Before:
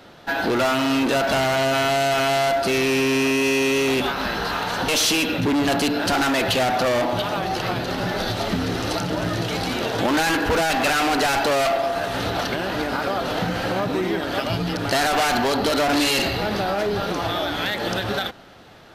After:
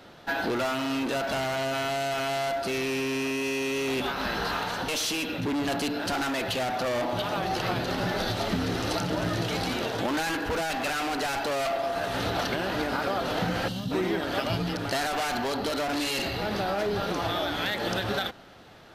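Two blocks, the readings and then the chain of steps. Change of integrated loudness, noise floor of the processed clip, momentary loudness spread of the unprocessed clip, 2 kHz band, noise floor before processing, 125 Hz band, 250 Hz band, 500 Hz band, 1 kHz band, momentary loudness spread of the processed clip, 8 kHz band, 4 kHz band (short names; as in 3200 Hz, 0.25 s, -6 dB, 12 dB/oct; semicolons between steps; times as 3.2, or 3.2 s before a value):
-7.0 dB, -35 dBFS, 5 LU, -7.0 dB, -30 dBFS, -5.5 dB, -7.0 dB, -7.0 dB, -7.0 dB, 1 LU, -8.5 dB, -7.0 dB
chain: spectral gain 13.68–13.92, 270–2700 Hz -16 dB; vocal rider within 4 dB 0.5 s; gain -7 dB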